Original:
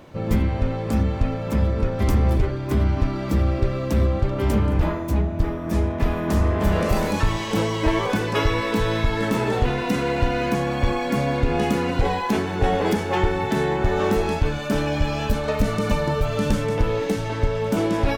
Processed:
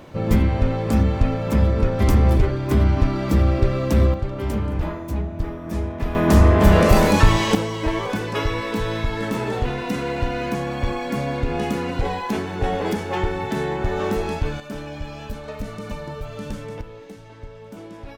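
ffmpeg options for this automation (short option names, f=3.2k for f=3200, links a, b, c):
-af "asetnsamples=n=441:p=0,asendcmd='4.14 volume volume -4dB;6.15 volume volume 7dB;7.55 volume volume -2.5dB;14.6 volume volume -10dB;16.81 volume volume -17dB',volume=3dB"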